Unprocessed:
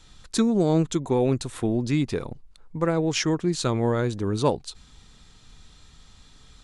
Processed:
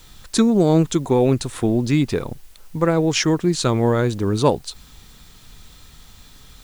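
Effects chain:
bit-depth reduction 10 bits, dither triangular
level +5.5 dB

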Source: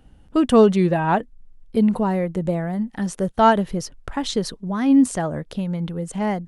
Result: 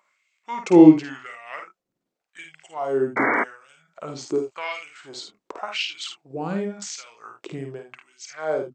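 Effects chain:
auto-filter high-pass sine 1.2 Hz 370–3,600 Hz
on a send: ambience of single reflections 38 ms −5.5 dB, 56 ms −12 dB
on the sum: sound drawn into the spectrogram noise, 0:02.34–0:02.55, 280–3,100 Hz −17 dBFS
wrong playback speed 45 rpm record played at 33 rpm
level −4 dB

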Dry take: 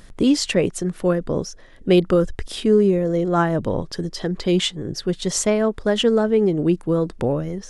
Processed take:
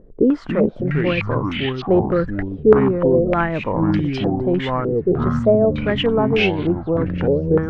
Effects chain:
delay with pitch and tempo change per echo 215 ms, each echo −5 semitones, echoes 3
hard clipping −9 dBFS, distortion −21 dB
low-pass on a step sequencer 3.3 Hz 450–3,000 Hz
level −2.5 dB

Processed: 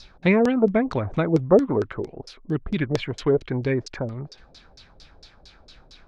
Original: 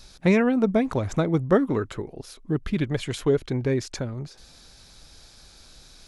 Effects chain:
auto-filter low-pass saw down 4.4 Hz 410–5,500 Hz

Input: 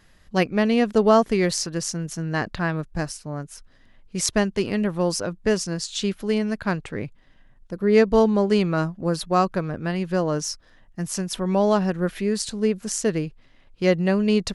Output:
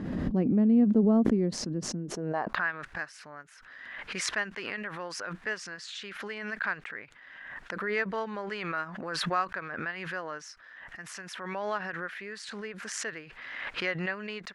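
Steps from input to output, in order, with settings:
band-pass filter sweep 240 Hz → 1,700 Hz, 0:01.96–0:02.67
background raised ahead of every attack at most 33 dB per second

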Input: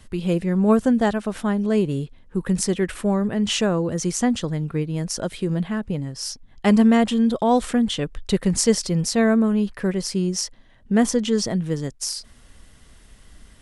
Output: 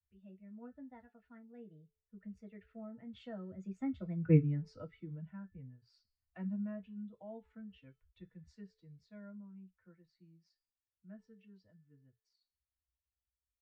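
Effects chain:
spectral dynamics exaggerated over time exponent 1.5
source passing by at 0:04.35, 33 m/s, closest 1.7 metres
low-pass filter 1,600 Hz 12 dB per octave
hum removal 437.6 Hz, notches 36
convolution reverb, pre-delay 3 ms, DRR 3 dB
one half of a high-frequency compander encoder only
level −4.5 dB

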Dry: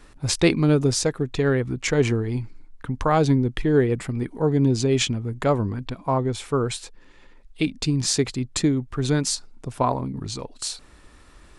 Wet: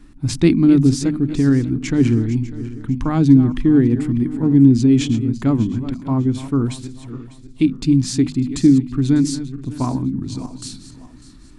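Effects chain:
feedback delay that plays each chunk backwards 299 ms, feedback 54%, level −12.5 dB
low shelf with overshoot 370 Hz +9 dB, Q 3
mains-hum notches 50/100/150/200/250 Hz
level −4 dB

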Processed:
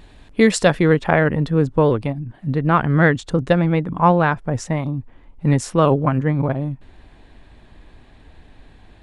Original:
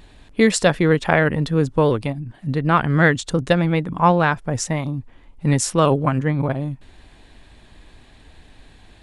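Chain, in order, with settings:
high-shelf EQ 3,100 Hz −3.5 dB, from 0:00.94 −11.5 dB
level +1.5 dB

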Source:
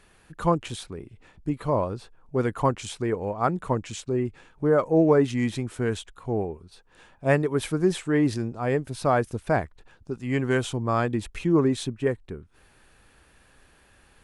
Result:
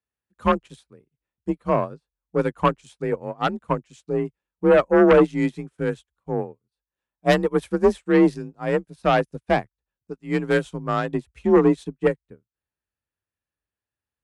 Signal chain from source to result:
harmonic generator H 5 −6 dB, 6 −20 dB, 7 −22 dB, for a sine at −7.5 dBFS
frequency shifter +35 Hz
expander for the loud parts 2.5 to 1, over −41 dBFS

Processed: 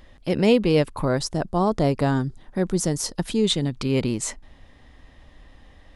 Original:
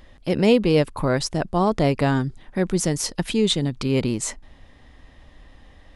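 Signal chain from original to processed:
0:01.05–0:03.44: parametric band 2,400 Hz −6.5 dB 0.97 octaves
level −1 dB

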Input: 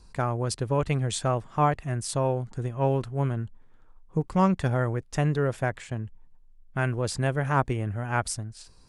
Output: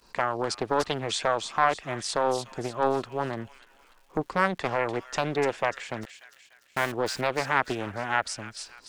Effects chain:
downward expander −50 dBFS
three-way crossover with the lows and the highs turned down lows −19 dB, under 260 Hz, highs −23 dB, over 6,900 Hz
in parallel at +2.5 dB: downward compressor, threshold −35 dBFS, peak gain reduction 16.5 dB
0:06.03–0:06.92: on the sum: bit-depth reduction 6 bits, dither none
on a send: delay with a high-pass on its return 295 ms, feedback 44%, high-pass 2,600 Hz, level −5.5 dB
on the sum: surface crackle 340 per second −52 dBFS
highs frequency-modulated by the lows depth 0.61 ms

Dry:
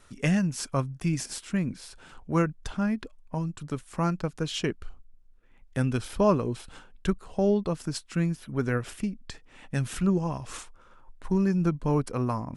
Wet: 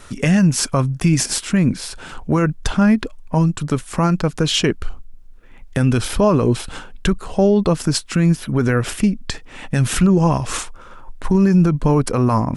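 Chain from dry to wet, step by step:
boost into a limiter +21 dB
level −5.5 dB

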